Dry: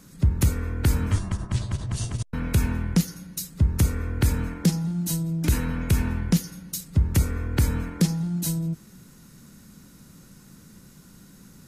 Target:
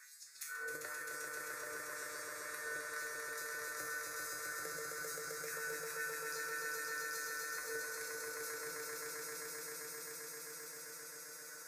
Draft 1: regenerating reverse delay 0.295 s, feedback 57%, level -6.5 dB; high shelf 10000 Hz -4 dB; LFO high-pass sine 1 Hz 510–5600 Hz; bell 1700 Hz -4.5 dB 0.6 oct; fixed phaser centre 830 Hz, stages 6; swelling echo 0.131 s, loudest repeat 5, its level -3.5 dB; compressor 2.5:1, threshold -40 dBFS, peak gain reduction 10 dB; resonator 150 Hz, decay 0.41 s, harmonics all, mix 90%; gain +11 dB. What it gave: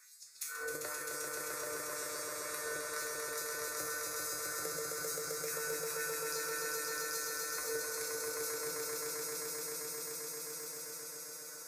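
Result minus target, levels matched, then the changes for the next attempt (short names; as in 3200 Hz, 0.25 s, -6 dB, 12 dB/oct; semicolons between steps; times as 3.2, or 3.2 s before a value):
compressor: peak gain reduction -7.5 dB; 2000 Hz band -5.0 dB
change: bell 1700 Hz +5.5 dB 0.6 oct; change: compressor 2.5:1, threshold -49.5 dBFS, peak gain reduction 17.5 dB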